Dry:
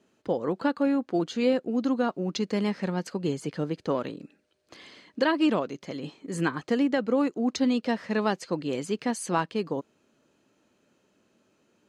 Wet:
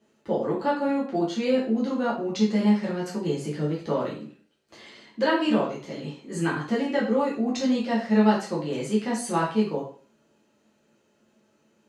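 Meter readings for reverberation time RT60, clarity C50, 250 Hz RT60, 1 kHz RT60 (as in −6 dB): 0.45 s, 5.5 dB, 0.45 s, 0.45 s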